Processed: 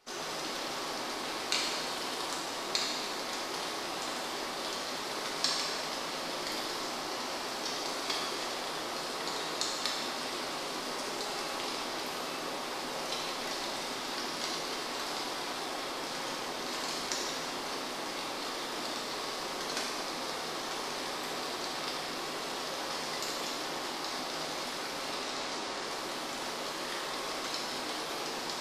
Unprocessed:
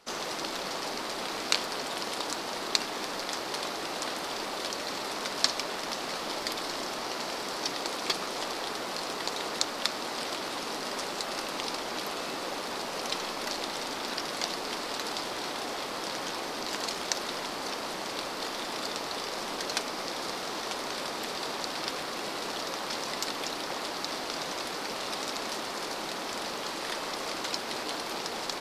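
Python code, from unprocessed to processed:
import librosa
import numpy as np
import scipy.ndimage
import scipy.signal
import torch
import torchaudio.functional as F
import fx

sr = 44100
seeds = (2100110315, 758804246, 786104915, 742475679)

y = fx.lowpass(x, sr, hz=8700.0, slope=12, at=(25.11, 25.85))
y = fx.rev_gated(y, sr, seeds[0], gate_ms=450, shape='falling', drr_db=-4.0)
y = y * 10.0 ** (-7.5 / 20.0)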